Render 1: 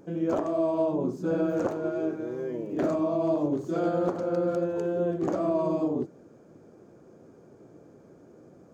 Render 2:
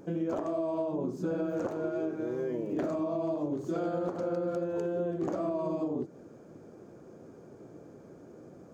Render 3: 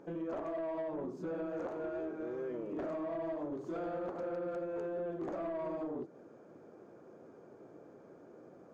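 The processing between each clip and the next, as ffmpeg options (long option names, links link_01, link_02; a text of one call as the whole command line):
ffmpeg -i in.wav -af "acompressor=threshold=-31dB:ratio=6,volume=2dB" out.wav
ffmpeg -i in.wav -filter_complex "[0:a]asplit=2[link_01][link_02];[link_02]highpass=frequency=720:poles=1,volume=16dB,asoftclip=type=tanh:threshold=-20.5dB[link_03];[link_01][link_03]amix=inputs=2:normalize=0,lowpass=frequency=1400:poles=1,volume=-6dB,volume=-9dB" out.wav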